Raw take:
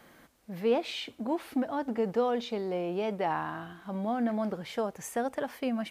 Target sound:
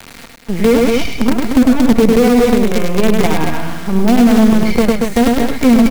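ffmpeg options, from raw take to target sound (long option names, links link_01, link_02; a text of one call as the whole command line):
ffmpeg -i in.wav -filter_complex "[0:a]aemphasis=mode=reproduction:type=50fm,aeval=exprs='0.158*(cos(1*acos(clip(val(0)/0.158,-1,1)))-cos(1*PI/2))+0.0355*(cos(5*acos(clip(val(0)/0.158,-1,1)))-cos(5*PI/2))':channel_layout=same,equalizer=frequency=2200:width_type=o:width=0.26:gain=13.5,aecho=1:1:4.3:0.81,acrusher=bits=4:dc=4:mix=0:aa=0.000001,acrossover=split=380[link_01][link_02];[link_02]acompressor=threshold=-55dB:ratio=1.5[link_03];[link_01][link_03]amix=inputs=2:normalize=0,aecho=1:1:102|230.3:0.631|0.447,alimiter=level_in=17dB:limit=-1dB:release=50:level=0:latency=1,volume=-1dB" out.wav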